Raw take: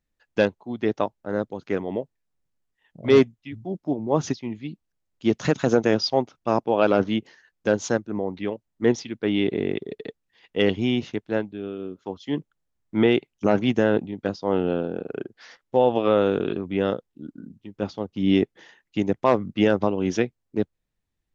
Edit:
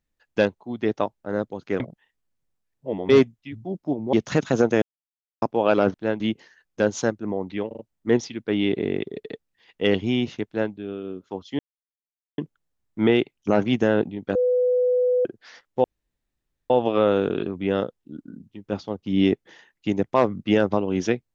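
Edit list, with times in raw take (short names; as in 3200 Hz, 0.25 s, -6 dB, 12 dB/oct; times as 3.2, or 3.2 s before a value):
1.8–3.09 reverse
4.13–5.26 cut
5.95–6.55 mute
8.54 stutter 0.04 s, 4 plays
11.21–11.47 copy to 7.07
12.34 insert silence 0.79 s
14.31–15.21 bleep 498 Hz -17 dBFS
15.8 insert room tone 0.86 s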